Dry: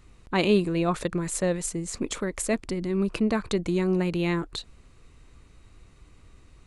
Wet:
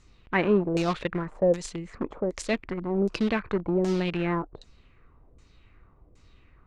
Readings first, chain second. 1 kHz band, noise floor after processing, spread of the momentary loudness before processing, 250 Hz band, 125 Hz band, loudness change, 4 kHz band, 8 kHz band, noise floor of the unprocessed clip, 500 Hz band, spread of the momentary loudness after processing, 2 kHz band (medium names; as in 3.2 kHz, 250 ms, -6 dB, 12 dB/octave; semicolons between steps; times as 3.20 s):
+0.5 dB, -59 dBFS, 8 LU, -1.5 dB, -2.0 dB, -0.5 dB, -4.5 dB, -11.0 dB, -55 dBFS, +1.0 dB, 8 LU, +0.5 dB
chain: in parallel at -10.5 dB: bit crusher 4-bit; on the sum: LFO low-pass saw down 1.3 Hz 480–7100 Hz; trim -4 dB